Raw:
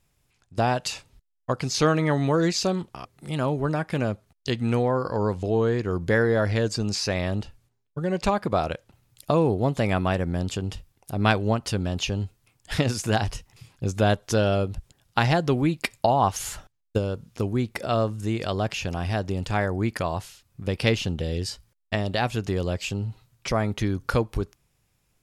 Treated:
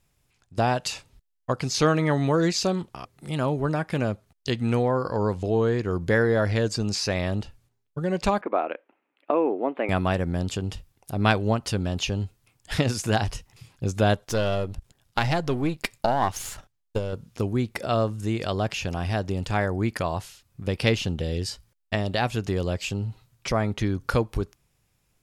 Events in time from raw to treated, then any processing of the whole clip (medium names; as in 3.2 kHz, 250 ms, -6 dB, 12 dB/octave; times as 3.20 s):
8.41–9.89 s: elliptic band-pass 280–2500 Hz
14.24–17.13 s: partial rectifier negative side -7 dB
23.52–24.01 s: treble shelf 11 kHz -9 dB